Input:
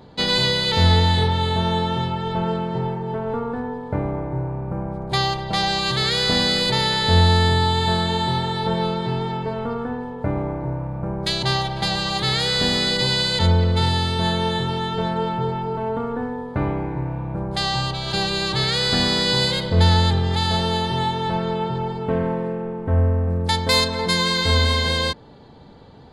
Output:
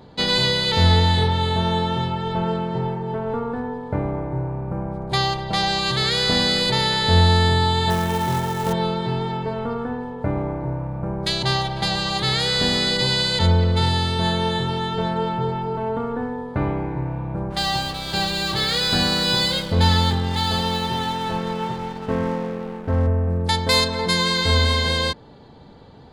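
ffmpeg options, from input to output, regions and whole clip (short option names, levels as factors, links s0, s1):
-filter_complex "[0:a]asettb=1/sr,asplit=3[s0][s1][s2];[s0]atrim=end=7.904[s3];[s1]atrim=start=7.9:end=8.73,asetpts=PTS-STARTPTS,afade=t=in:d=0.004:c=qsin,afade=t=out:st=0.826:d=0.004:c=qsin,lowpass=f=2700:w=0.5412,lowpass=f=2700:w=1.3066,acrusher=bits=3:mode=log:mix=0:aa=0.000001[s4];[s2]atrim=start=8.726[s5];[s3][s4]acrossfade=d=0.004:c1=hsin:c2=qsin[s6];[s6][s5]acrossfade=d=0.004:c1=qsin:c2=hsin,asettb=1/sr,asplit=3[s7][s8][s9];[s7]atrim=end=17.504[s10];[s8]atrim=start=17.5:end=23.07,asetpts=PTS-STARTPTS,afade=t=in:d=0.004:c=qsin,afade=t=out:st=5.566:d=0.004:c=qsin,asplit=2[s11][s12];[s12]adelay=19,volume=0.596[s13];[s11][s13]amix=inputs=2:normalize=0,atrim=end_sample=245637,aeval=exprs='sgn(val(0))*max(abs(val(0))-0.0158,0)':c=same[s14];[s9]atrim=start=23.066[s15];[s10][s14]acrossfade=d=0.004:c1=hsin:c2=qsin[s16];[s16][s15]acrossfade=d=0.004:c1=qsin:c2=hsin"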